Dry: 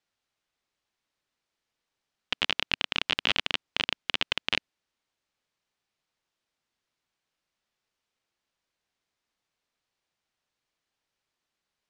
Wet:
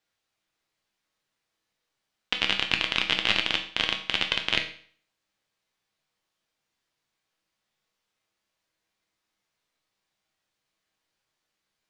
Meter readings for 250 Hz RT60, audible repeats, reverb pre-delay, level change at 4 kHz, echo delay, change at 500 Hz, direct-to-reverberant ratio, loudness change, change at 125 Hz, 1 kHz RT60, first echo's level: 0.50 s, none, 6 ms, +3.0 dB, none, +2.5 dB, 3.5 dB, +3.0 dB, +3.0 dB, 0.50 s, none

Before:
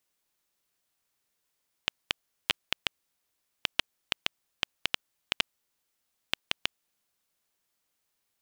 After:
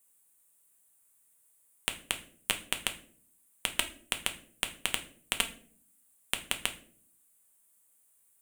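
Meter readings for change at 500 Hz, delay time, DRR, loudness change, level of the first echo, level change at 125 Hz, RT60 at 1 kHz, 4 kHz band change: +1.0 dB, none, 6.0 dB, 0.0 dB, none, +1.5 dB, 0.40 s, -2.0 dB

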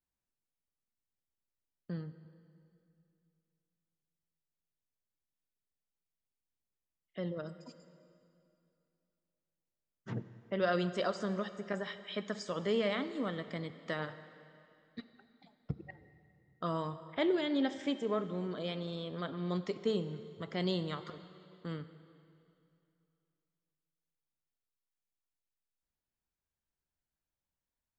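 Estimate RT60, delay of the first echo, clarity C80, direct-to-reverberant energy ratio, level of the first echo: 2.7 s, none, 13.0 dB, 11.5 dB, none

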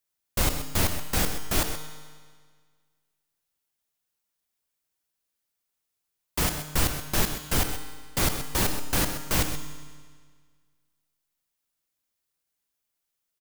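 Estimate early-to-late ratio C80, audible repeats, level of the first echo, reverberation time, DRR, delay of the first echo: 8.0 dB, 1, -10.5 dB, 1.7 s, 6.0 dB, 0.127 s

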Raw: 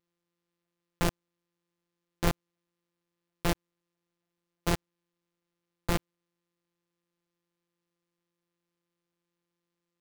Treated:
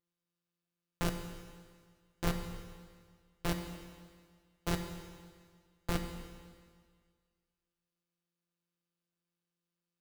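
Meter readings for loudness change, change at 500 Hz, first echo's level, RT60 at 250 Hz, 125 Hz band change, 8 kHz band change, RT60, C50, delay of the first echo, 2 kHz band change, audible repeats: -6.5 dB, -5.5 dB, none, 1.8 s, -3.5 dB, -5.5 dB, 1.8 s, 7.0 dB, none, -5.5 dB, none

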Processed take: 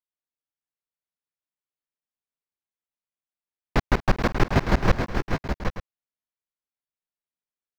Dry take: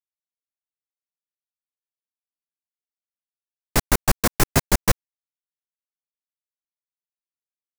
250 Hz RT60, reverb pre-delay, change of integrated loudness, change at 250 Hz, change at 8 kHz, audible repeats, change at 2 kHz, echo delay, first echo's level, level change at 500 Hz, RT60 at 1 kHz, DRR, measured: none, none, -3.5 dB, +1.0 dB, -19.5 dB, 4, -1.0 dB, 0.206 s, -17.0 dB, +0.5 dB, none, none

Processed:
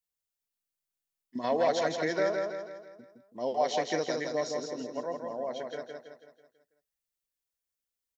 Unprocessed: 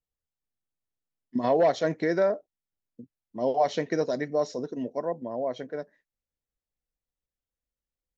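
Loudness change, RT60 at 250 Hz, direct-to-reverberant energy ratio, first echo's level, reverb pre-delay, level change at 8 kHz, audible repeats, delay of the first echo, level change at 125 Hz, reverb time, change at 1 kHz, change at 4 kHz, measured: -4.0 dB, none, none, -4.0 dB, none, n/a, 5, 0.164 s, -7.5 dB, none, -2.5 dB, +3.5 dB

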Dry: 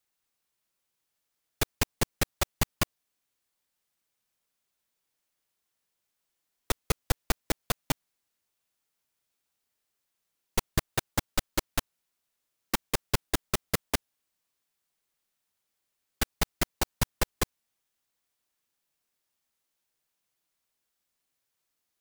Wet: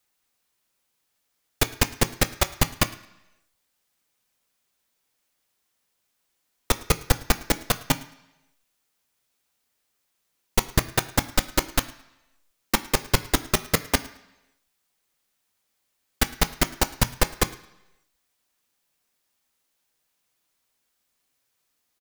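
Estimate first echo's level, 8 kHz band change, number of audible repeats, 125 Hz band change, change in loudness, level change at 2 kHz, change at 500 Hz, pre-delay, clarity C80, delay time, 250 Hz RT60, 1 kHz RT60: -23.5 dB, +7.0 dB, 2, +6.5 dB, +7.0 dB, +7.0 dB, +6.5 dB, 3 ms, 18.0 dB, 0.109 s, 0.85 s, 0.95 s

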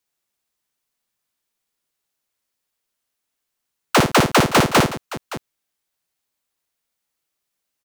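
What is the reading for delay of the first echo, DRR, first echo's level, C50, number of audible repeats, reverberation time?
57 ms, none, -5.5 dB, none, 3, none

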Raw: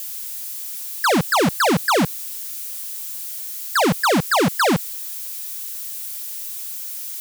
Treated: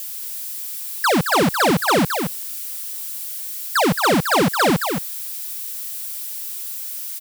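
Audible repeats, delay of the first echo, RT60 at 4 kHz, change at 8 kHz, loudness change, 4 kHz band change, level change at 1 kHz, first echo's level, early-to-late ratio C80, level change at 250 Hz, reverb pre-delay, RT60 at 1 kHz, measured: 1, 0.22 s, none, +0.5 dB, +1.0 dB, +1.0 dB, +1.0 dB, -6.5 dB, none, +1.0 dB, none, none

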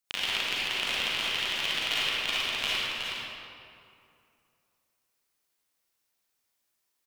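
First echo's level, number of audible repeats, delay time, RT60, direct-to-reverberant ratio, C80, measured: -5.5 dB, 1, 0.368 s, 2.5 s, -9.0 dB, -4.0 dB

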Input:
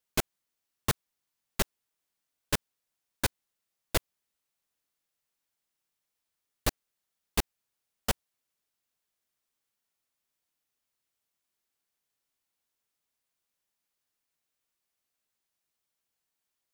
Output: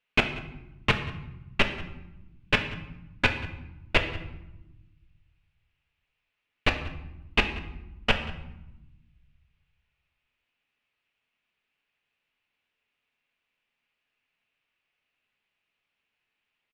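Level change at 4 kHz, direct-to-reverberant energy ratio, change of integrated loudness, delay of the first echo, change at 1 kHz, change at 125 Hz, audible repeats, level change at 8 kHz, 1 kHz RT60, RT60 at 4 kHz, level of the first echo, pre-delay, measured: +7.0 dB, 5.0 dB, +5.0 dB, 0.186 s, +6.0 dB, +5.5 dB, 1, -13.5 dB, 0.90 s, 0.65 s, -20.0 dB, 4 ms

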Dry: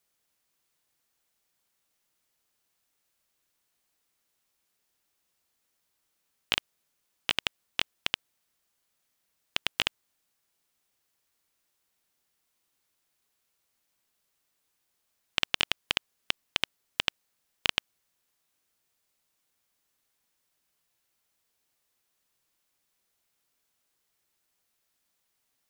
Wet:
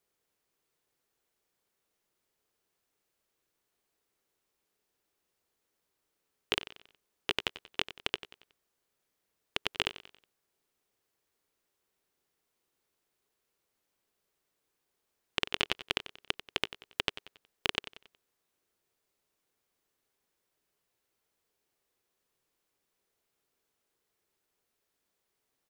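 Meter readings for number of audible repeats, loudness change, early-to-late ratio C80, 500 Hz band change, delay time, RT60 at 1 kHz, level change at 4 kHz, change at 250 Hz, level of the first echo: 3, -4.0 dB, none, +3.5 dB, 92 ms, none, -4.5 dB, +1.5 dB, -14.5 dB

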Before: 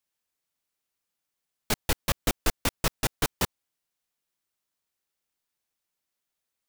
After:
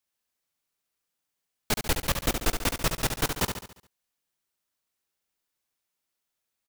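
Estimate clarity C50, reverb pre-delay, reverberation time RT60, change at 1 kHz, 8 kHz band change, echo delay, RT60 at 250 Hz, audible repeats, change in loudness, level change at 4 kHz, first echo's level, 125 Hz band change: none, none, none, +1.0 dB, +1.0 dB, 70 ms, none, 5, +1.0 dB, +1.0 dB, -6.5 dB, +1.0 dB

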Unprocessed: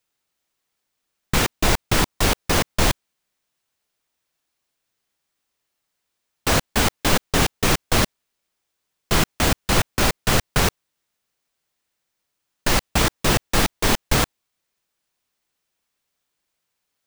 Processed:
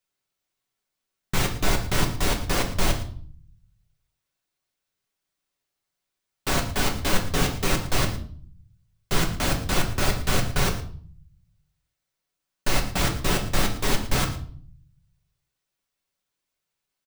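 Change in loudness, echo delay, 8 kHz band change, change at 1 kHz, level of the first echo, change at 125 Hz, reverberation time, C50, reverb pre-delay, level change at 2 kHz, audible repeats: -5.0 dB, 0.113 s, -5.5 dB, -5.0 dB, -15.5 dB, -2.5 dB, 0.50 s, 9.5 dB, 5 ms, -5.0 dB, 1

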